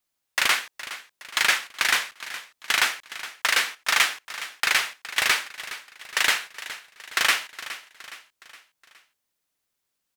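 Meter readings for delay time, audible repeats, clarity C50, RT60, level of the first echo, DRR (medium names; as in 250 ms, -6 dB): 416 ms, 4, no reverb, no reverb, -14.5 dB, no reverb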